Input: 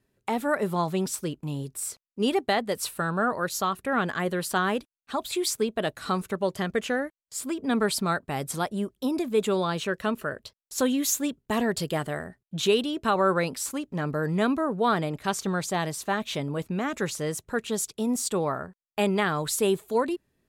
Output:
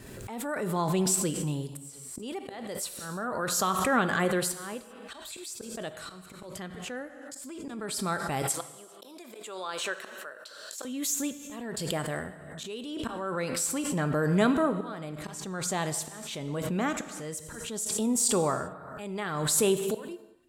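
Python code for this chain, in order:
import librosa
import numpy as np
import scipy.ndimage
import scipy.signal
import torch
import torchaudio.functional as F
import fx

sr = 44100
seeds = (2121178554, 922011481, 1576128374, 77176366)

y = fx.peak_eq(x, sr, hz=7900.0, db=6.5, octaves=0.41)
y = fx.auto_swell(y, sr, attack_ms=783.0)
y = fx.highpass(y, sr, hz=590.0, slope=12, at=(8.42, 10.85))
y = fx.rev_gated(y, sr, seeds[0], gate_ms=420, shape='falling', drr_db=10.0)
y = fx.pre_swell(y, sr, db_per_s=33.0)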